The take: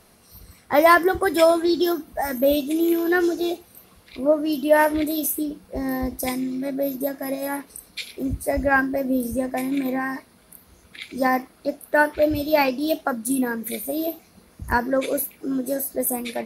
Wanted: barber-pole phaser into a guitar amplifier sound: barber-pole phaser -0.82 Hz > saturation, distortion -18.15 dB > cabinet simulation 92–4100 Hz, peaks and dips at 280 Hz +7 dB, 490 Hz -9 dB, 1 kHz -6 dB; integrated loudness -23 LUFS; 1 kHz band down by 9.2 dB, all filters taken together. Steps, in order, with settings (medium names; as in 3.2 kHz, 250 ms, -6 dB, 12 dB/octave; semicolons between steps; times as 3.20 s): peaking EQ 1 kHz -8.5 dB; barber-pole phaser -0.82 Hz; saturation -15.5 dBFS; cabinet simulation 92–4100 Hz, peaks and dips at 280 Hz +7 dB, 490 Hz -9 dB, 1 kHz -6 dB; trim +4 dB